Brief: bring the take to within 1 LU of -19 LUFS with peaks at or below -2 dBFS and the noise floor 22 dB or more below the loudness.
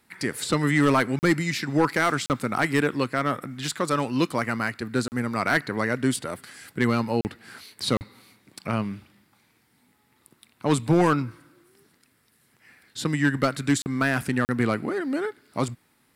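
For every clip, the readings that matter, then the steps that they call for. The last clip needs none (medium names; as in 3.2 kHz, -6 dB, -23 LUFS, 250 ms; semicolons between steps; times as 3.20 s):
clipped samples 0.3%; clipping level -12.5 dBFS; dropouts 7; longest dropout 39 ms; loudness -25.0 LUFS; peak level -12.5 dBFS; loudness target -19.0 LUFS
-> clip repair -12.5 dBFS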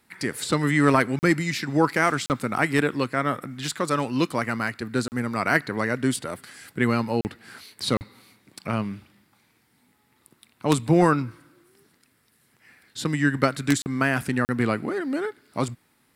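clipped samples 0.0%; dropouts 7; longest dropout 39 ms
-> interpolate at 1.19/2.26/5.08/7.21/7.97/13.82/14.45 s, 39 ms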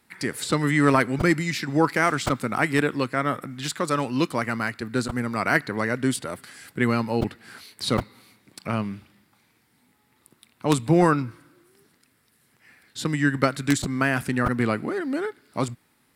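dropouts 0; loudness -24.5 LUFS; peak level -3.5 dBFS; loudness target -19.0 LUFS
-> trim +5.5 dB; peak limiter -2 dBFS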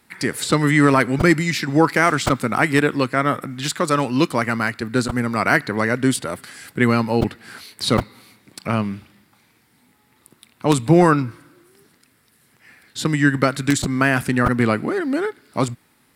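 loudness -19.5 LUFS; peak level -2.0 dBFS; noise floor -60 dBFS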